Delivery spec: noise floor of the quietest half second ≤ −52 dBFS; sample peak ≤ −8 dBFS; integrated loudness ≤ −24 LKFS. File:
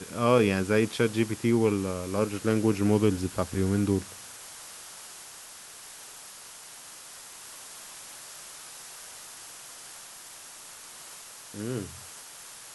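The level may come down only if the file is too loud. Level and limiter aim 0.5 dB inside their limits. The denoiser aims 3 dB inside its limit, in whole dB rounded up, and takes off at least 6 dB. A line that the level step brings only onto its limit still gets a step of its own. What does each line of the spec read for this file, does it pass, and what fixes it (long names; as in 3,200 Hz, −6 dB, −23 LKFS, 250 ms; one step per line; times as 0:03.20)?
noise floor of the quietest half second −46 dBFS: out of spec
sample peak −9.0 dBFS: in spec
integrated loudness −26.5 LKFS: in spec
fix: broadband denoise 9 dB, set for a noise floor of −46 dBFS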